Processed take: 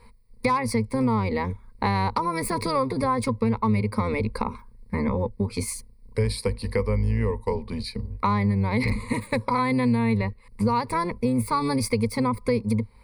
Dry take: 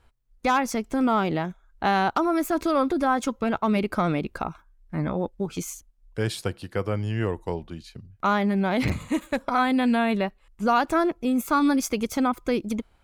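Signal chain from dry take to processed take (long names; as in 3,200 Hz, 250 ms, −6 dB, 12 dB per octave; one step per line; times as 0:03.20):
sub-octave generator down 1 octave, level −1 dB
EQ curve with evenly spaced ripples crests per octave 0.92, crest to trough 18 dB
downward compressor 3 to 1, threshold −31 dBFS, peak gain reduction 16.5 dB
level +6.5 dB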